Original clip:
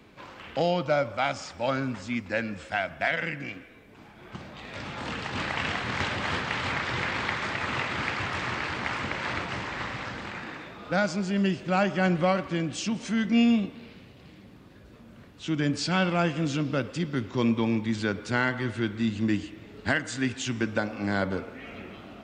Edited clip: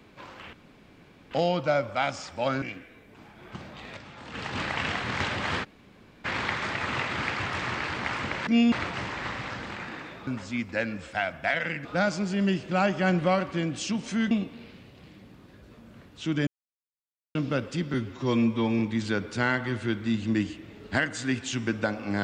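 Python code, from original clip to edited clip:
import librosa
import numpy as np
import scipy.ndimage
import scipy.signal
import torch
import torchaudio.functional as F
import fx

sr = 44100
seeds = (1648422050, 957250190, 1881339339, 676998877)

y = fx.edit(x, sr, fx.insert_room_tone(at_s=0.53, length_s=0.78),
    fx.move(start_s=1.84, length_s=1.58, to_s=10.82),
    fx.fade_down_up(start_s=4.38, length_s=1.15, db=-9.0, fade_s=0.39, curve='log'),
    fx.room_tone_fill(start_s=6.44, length_s=0.61, crossfade_s=0.02),
    fx.move(start_s=13.28, length_s=0.25, to_s=9.27),
    fx.silence(start_s=15.69, length_s=0.88),
    fx.stretch_span(start_s=17.16, length_s=0.57, factor=1.5), tone=tone)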